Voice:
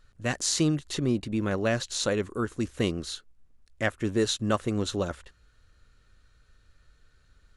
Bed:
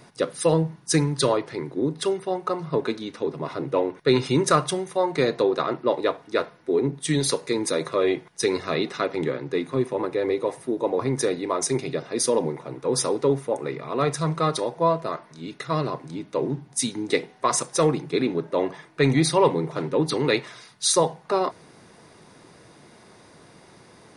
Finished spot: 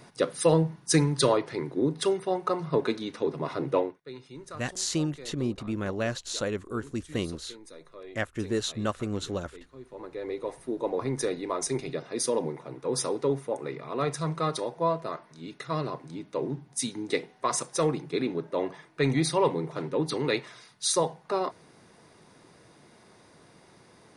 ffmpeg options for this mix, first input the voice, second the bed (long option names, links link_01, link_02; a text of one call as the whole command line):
ffmpeg -i stem1.wav -i stem2.wav -filter_complex "[0:a]adelay=4350,volume=-3.5dB[link_01];[1:a]volume=16.5dB,afade=type=out:start_time=3.75:duration=0.23:silence=0.0794328,afade=type=in:start_time=9.79:duration=0.98:silence=0.125893[link_02];[link_01][link_02]amix=inputs=2:normalize=0" out.wav